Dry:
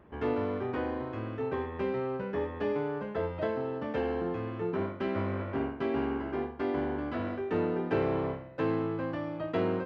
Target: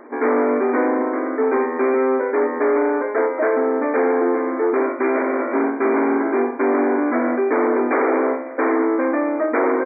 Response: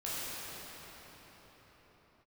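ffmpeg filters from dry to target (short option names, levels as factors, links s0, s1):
-af "aeval=exprs='0.141*sin(PI/2*3.16*val(0)/0.141)':c=same,afftfilt=real='re*between(b*sr/4096,230,2400)':imag='im*between(b*sr/4096,230,2400)':win_size=4096:overlap=0.75,aecho=1:1:554:0.0841,volume=1.5"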